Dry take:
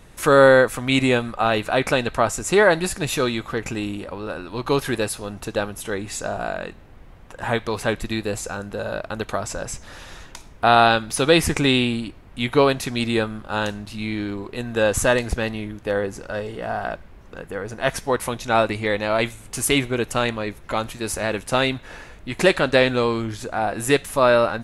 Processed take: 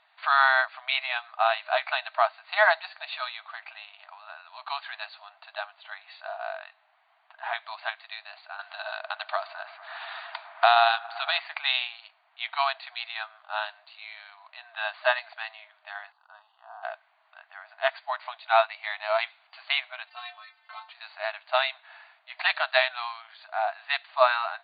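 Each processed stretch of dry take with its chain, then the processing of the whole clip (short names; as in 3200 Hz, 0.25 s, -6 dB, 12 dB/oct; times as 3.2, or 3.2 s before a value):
8.59–11.4 band-limited delay 0.111 s, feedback 84%, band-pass 1100 Hz, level -18 dB + three-band squash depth 70%
16.12–16.83 band shelf 3200 Hz -11.5 dB 2.7 oct + fixed phaser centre 2200 Hz, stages 6
20.07–20.89 high shelf 3100 Hz +7 dB + metallic resonator 65 Hz, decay 0.58 s, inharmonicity 0.03 + fast leveller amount 50%
whole clip: FFT band-pass 620–4700 Hz; upward expander 1.5:1, over -32 dBFS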